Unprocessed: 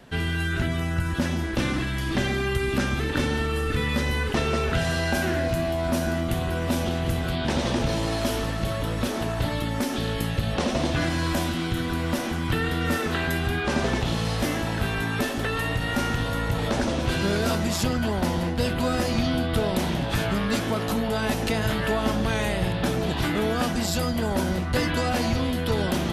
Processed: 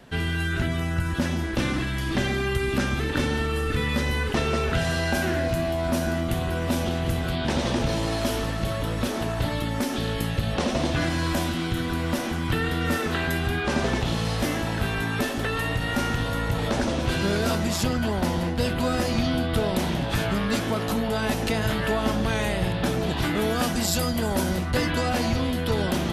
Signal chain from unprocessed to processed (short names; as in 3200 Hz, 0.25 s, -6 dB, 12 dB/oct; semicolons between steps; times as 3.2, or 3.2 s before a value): 23.39–24.71 high shelf 6000 Hz +7 dB